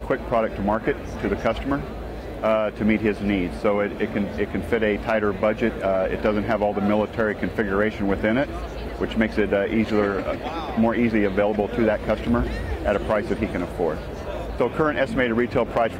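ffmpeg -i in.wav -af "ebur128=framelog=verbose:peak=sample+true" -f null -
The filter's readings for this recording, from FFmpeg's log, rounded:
Integrated loudness:
  I:         -23.3 LUFS
  Threshold: -33.3 LUFS
Loudness range:
  LRA:         1.8 LU
  Threshold: -43.2 LUFS
  LRA low:   -24.1 LUFS
  LRA high:  -22.3 LUFS
Sample peak:
  Peak:       -6.7 dBFS
True peak:
  Peak:       -6.7 dBFS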